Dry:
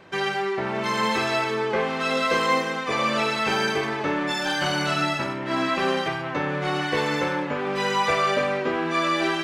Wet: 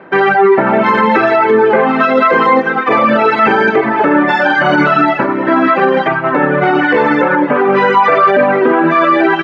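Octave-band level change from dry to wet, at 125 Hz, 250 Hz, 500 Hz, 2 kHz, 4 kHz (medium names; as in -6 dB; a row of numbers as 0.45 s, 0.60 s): +9.0 dB, +15.0 dB, +15.0 dB, +12.5 dB, +1.0 dB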